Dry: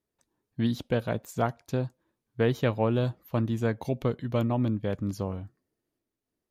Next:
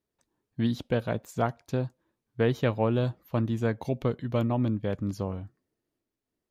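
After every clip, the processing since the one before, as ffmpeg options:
-af "highshelf=f=8.3k:g=-5.5"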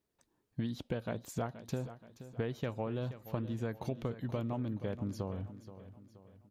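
-af "acompressor=threshold=-34dB:ratio=10,aecho=1:1:476|952|1428|1904:0.211|0.0951|0.0428|0.0193,volume=1dB"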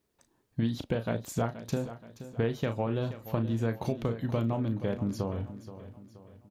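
-filter_complex "[0:a]asplit=2[a][b];[b]adelay=35,volume=-9.5dB[c];[a][c]amix=inputs=2:normalize=0,volume=6dB"

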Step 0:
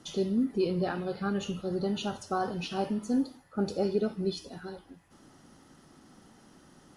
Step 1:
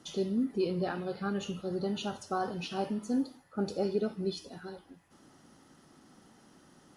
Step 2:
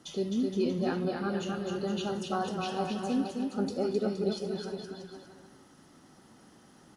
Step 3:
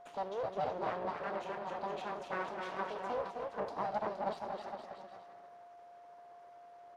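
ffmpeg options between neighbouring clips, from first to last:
-af "lowshelf=f=68:g=-8.5,volume=-2dB"
-af "aecho=1:1:260|468|634.4|767.5|874:0.631|0.398|0.251|0.158|0.1"
-af "aeval=exprs='abs(val(0))':c=same,bandpass=f=820:t=q:w=0.89:csg=0,aeval=exprs='val(0)+0.002*sin(2*PI*700*n/s)':c=same,volume=1dB"

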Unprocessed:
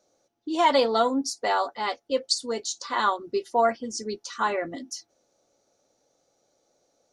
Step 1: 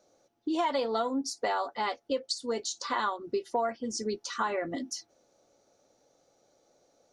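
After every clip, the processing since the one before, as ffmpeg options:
-af "acompressor=threshold=-31dB:ratio=4,highshelf=f=4.3k:g=-5,volume=3dB"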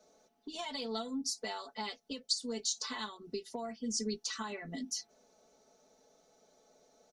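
-filter_complex "[0:a]acrossover=split=200|3000[a][b][c];[b]acompressor=threshold=-50dB:ratio=2.5[d];[a][d][c]amix=inputs=3:normalize=0,aecho=1:1:4.6:0.96,volume=-1.5dB"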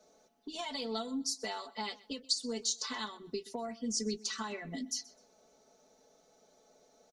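-af "aecho=1:1:127|254:0.0891|0.0232,volume=1dB"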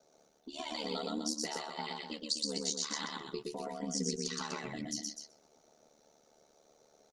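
-af "aecho=1:1:119.5|250.7:0.794|0.398,aeval=exprs='val(0)*sin(2*PI*37*n/s)':c=same"

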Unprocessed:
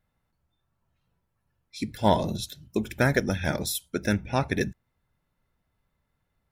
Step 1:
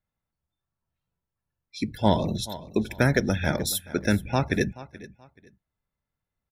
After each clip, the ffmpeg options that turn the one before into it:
-filter_complex "[0:a]afftdn=nr=13:nf=-45,aecho=1:1:429|858:0.112|0.0292,acrossover=split=420|3000[a][b][c];[b]acompressor=threshold=-26dB:ratio=2.5[d];[a][d][c]amix=inputs=3:normalize=0,volume=2.5dB"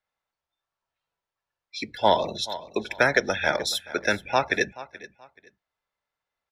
-filter_complex "[0:a]acrossover=split=450 6300:gain=0.1 1 0.112[a][b][c];[a][b][c]amix=inputs=3:normalize=0,volume=6dB"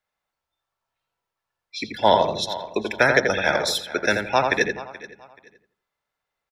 -filter_complex "[0:a]asplit=2[a][b];[b]adelay=84,lowpass=f=2k:p=1,volume=-4dB,asplit=2[c][d];[d]adelay=84,lowpass=f=2k:p=1,volume=0.3,asplit=2[e][f];[f]adelay=84,lowpass=f=2k:p=1,volume=0.3,asplit=2[g][h];[h]adelay=84,lowpass=f=2k:p=1,volume=0.3[i];[a][c][e][g][i]amix=inputs=5:normalize=0,volume=2.5dB"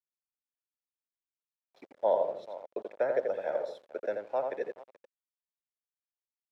-af "aeval=exprs='val(0)*gte(abs(val(0)),0.0355)':c=same,bandpass=f=550:t=q:w=3.6:csg=0,volume=-5dB"

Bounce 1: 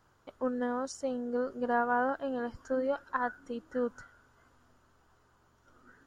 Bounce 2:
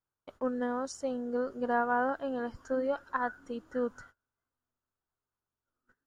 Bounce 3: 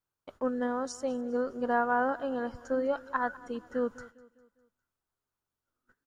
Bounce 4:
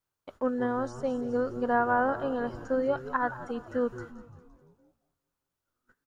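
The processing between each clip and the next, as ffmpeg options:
-af "agate=range=-27dB:threshold=-54dB:ratio=16:detection=peak"
-af "aecho=1:1:202|404|606|808:0.0944|0.0453|0.0218|0.0104,volume=1.5dB"
-filter_complex "[0:a]acrossover=split=2700[a][b];[b]acompressor=threshold=-56dB:ratio=4:attack=1:release=60[c];[a][c]amix=inputs=2:normalize=0,asplit=7[d][e][f][g][h][i][j];[e]adelay=172,afreqshift=-130,volume=-15dB[k];[f]adelay=344,afreqshift=-260,volume=-19.6dB[l];[g]adelay=516,afreqshift=-390,volume=-24.2dB[m];[h]adelay=688,afreqshift=-520,volume=-28.7dB[n];[i]adelay=860,afreqshift=-650,volume=-33.3dB[o];[j]adelay=1032,afreqshift=-780,volume=-37.9dB[p];[d][k][l][m][n][o][p]amix=inputs=7:normalize=0,volume=2dB"

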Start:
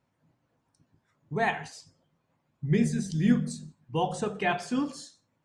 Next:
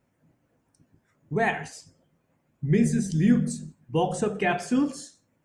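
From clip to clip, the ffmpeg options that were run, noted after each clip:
-filter_complex "[0:a]equalizer=f=125:t=o:w=1:g=-4,equalizer=f=1k:t=o:w=1:g=-7,equalizer=f=4k:t=o:w=1:g=-9,asplit=2[a][b];[b]alimiter=limit=-22.5dB:level=0:latency=1,volume=2dB[c];[a][c]amix=inputs=2:normalize=0"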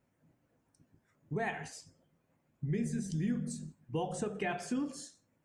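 -af "acompressor=threshold=-29dB:ratio=2.5,volume=-5dB"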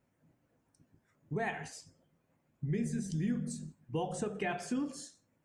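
-af anull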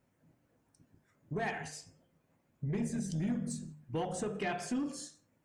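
-af "aeval=exprs='0.0668*sin(PI/2*1.41*val(0)/0.0668)':c=same,bandreject=f=74.9:t=h:w=4,bandreject=f=149.8:t=h:w=4,bandreject=f=224.7:t=h:w=4,bandreject=f=299.6:t=h:w=4,bandreject=f=374.5:t=h:w=4,bandreject=f=449.4:t=h:w=4,bandreject=f=524.3:t=h:w=4,bandreject=f=599.2:t=h:w=4,bandreject=f=674.1:t=h:w=4,bandreject=f=749:t=h:w=4,bandreject=f=823.9:t=h:w=4,bandreject=f=898.8:t=h:w=4,bandreject=f=973.7:t=h:w=4,bandreject=f=1.0486k:t=h:w=4,bandreject=f=1.1235k:t=h:w=4,bandreject=f=1.1984k:t=h:w=4,bandreject=f=1.2733k:t=h:w=4,bandreject=f=1.3482k:t=h:w=4,bandreject=f=1.4231k:t=h:w=4,bandreject=f=1.498k:t=h:w=4,bandreject=f=1.5729k:t=h:w=4,bandreject=f=1.6478k:t=h:w=4,bandreject=f=1.7227k:t=h:w=4,bandreject=f=1.7976k:t=h:w=4,bandreject=f=1.8725k:t=h:w=4,bandreject=f=1.9474k:t=h:w=4,bandreject=f=2.0223k:t=h:w=4,bandreject=f=2.0972k:t=h:w=4,bandreject=f=2.1721k:t=h:w=4,bandreject=f=2.247k:t=h:w=4,bandreject=f=2.3219k:t=h:w=4,bandreject=f=2.3968k:t=h:w=4,bandreject=f=2.4717k:t=h:w=4,bandreject=f=2.5466k:t=h:w=4,bandreject=f=2.6215k:t=h:w=4,bandreject=f=2.6964k:t=h:w=4,bandreject=f=2.7713k:t=h:w=4,bandreject=f=2.8462k:t=h:w=4,bandreject=f=2.9211k:t=h:w=4,volume=-5dB"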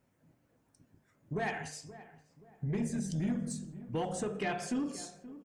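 -filter_complex "[0:a]asplit=2[a][b];[b]adelay=527,lowpass=f=1.2k:p=1,volume=-15dB,asplit=2[c][d];[d]adelay=527,lowpass=f=1.2k:p=1,volume=0.4,asplit=2[e][f];[f]adelay=527,lowpass=f=1.2k:p=1,volume=0.4,asplit=2[g][h];[h]adelay=527,lowpass=f=1.2k:p=1,volume=0.4[i];[a][c][e][g][i]amix=inputs=5:normalize=0,volume=1dB"

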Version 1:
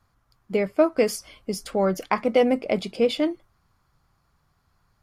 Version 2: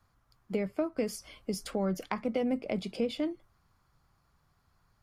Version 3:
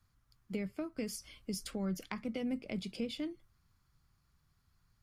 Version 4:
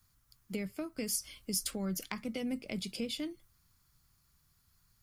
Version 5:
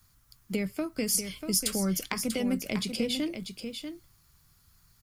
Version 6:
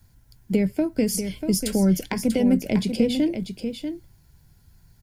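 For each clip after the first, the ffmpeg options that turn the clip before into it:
-filter_complex "[0:a]acrossover=split=240[a][b];[b]acompressor=threshold=-31dB:ratio=3[c];[a][c]amix=inputs=2:normalize=0,volume=-3dB"
-af "equalizer=f=690:w=0.6:g=-11.5,volume=-1dB"
-af "crystalizer=i=2.5:c=0"
-af "aecho=1:1:641:0.398,volume=7dB"
-af "asuperstop=centerf=1200:order=4:qfactor=3.5,tiltshelf=f=1.2k:g=6,volume=4.5dB"

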